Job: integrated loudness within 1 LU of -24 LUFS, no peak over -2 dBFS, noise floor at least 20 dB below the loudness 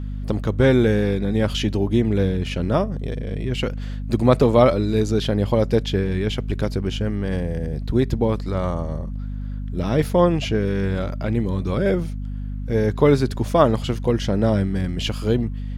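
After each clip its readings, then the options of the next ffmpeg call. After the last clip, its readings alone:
hum 50 Hz; harmonics up to 250 Hz; hum level -26 dBFS; loudness -21.5 LUFS; peak -2.0 dBFS; loudness target -24.0 LUFS
-> -af "bandreject=f=50:t=h:w=6,bandreject=f=100:t=h:w=6,bandreject=f=150:t=h:w=6,bandreject=f=200:t=h:w=6,bandreject=f=250:t=h:w=6"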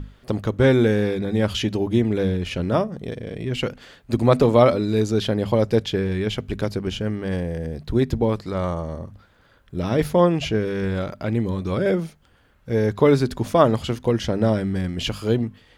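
hum none; loudness -22.0 LUFS; peak -2.0 dBFS; loudness target -24.0 LUFS
-> -af "volume=-2dB"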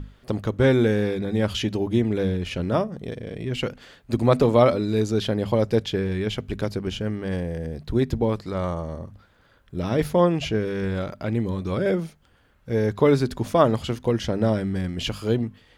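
loudness -24.0 LUFS; peak -4.0 dBFS; noise floor -59 dBFS

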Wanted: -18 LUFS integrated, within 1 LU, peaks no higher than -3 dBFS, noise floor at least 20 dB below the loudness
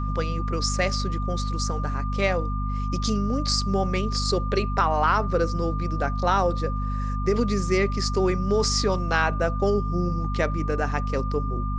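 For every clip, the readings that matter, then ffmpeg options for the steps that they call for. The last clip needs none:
hum 50 Hz; harmonics up to 250 Hz; hum level -24 dBFS; steady tone 1200 Hz; tone level -33 dBFS; loudness -25.0 LUFS; peak -7.5 dBFS; loudness target -18.0 LUFS
-> -af "bandreject=f=50:t=h:w=6,bandreject=f=100:t=h:w=6,bandreject=f=150:t=h:w=6,bandreject=f=200:t=h:w=6,bandreject=f=250:t=h:w=6"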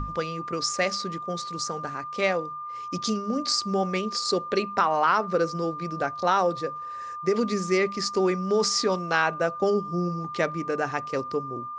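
hum none; steady tone 1200 Hz; tone level -33 dBFS
-> -af "bandreject=f=1.2k:w=30"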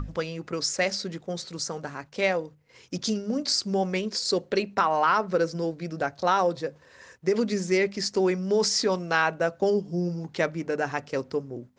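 steady tone none; loudness -27.0 LUFS; peak -8.5 dBFS; loudness target -18.0 LUFS
-> -af "volume=9dB,alimiter=limit=-3dB:level=0:latency=1"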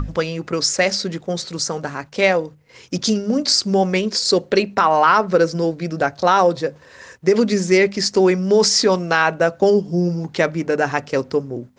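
loudness -18.0 LUFS; peak -3.0 dBFS; noise floor -48 dBFS

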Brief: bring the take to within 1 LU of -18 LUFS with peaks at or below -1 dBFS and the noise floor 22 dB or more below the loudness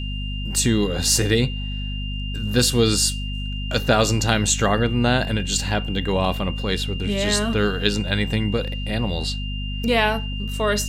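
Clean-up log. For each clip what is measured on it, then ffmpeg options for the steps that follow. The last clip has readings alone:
hum 50 Hz; harmonics up to 250 Hz; hum level -25 dBFS; steady tone 2800 Hz; tone level -33 dBFS; loudness -21.5 LUFS; peak -2.0 dBFS; loudness target -18.0 LUFS
-> -af "bandreject=f=50:t=h:w=4,bandreject=f=100:t=h:w=4,bandreject=f=150:t=h:w=4,bandreject=f=200:t=h:w=4,bandreject=f=250:t=h:w=4"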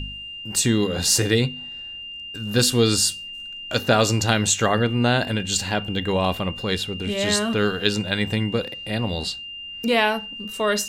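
hum none; steady tone 2800 Hz; tone level -33 dBFS
-> -af "bandreject=f=2.8k:w=30"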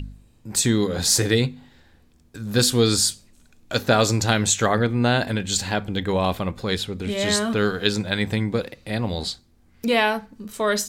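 steady tone none; loudness -22.0 LUFS; peak -2.5 dBFS; loudness target -18.0 LUFS
-> -af "volume=4dB,alimiter=limit=-1dB:level=0:latency=1"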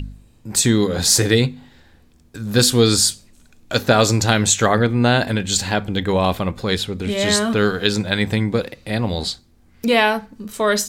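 loudness -18.0 LUFS; peak -1.0 dBFS; noise floor -53 dBFS

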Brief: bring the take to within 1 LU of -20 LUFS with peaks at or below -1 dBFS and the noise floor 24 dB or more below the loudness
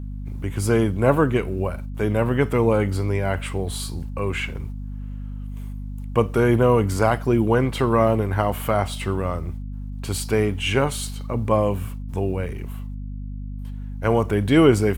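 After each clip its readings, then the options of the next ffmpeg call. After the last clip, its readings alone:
hum 50 Hz; harmonics up to 250 Hz; hum level -29 dBFS; loudness -22.0 LUFS; peak -3.5 dBFS; loudness target -20.0 LUFS
-> -af "bandreject=f=50:t=h:w=4,bandreject=f=100:t=h:w=4,bandreject=f=150:t=h:w=4,bandreject=f=200:t=h:w=4,bandreject=f=250:t=h:w=4"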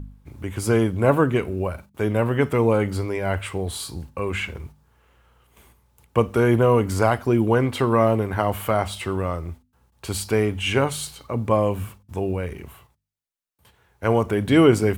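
hum none; loudness -22.0 LUFS; peak -4.0 dBFS; loudness target -20.0 LUFS
-> -af "volume=2dB"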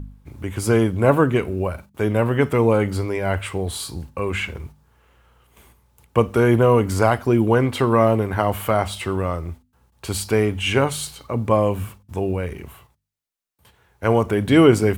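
loudness -20.0 LUFS; peak -2.0 dBFS; noise floor -63 dBFS

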